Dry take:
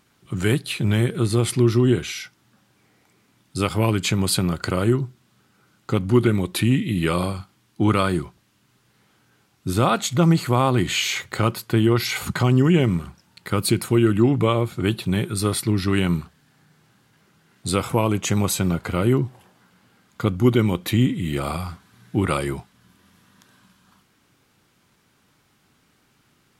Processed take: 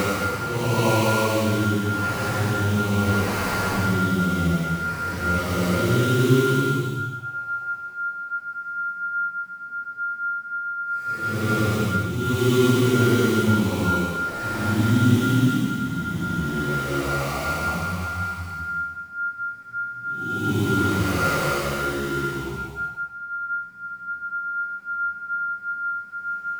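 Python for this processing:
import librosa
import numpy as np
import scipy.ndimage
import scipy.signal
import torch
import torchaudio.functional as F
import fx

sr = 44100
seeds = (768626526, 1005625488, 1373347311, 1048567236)

y = fx.sample_hold(x, sr, seeds[0], rate_hz=3400.0, jitter_pct=20)
y = y + 10.0 ** (-25.0 / 20.0) * np.sin(2.0 * np.pi * 1400.0 * np.arange(len(y)) / sr)
y = fx.paulstretch(y, sr, seeds[1], factor=4.7, window_s=0.25, from_s=17.78)
y = y * 10.0 ** (-1.5 / 20.0)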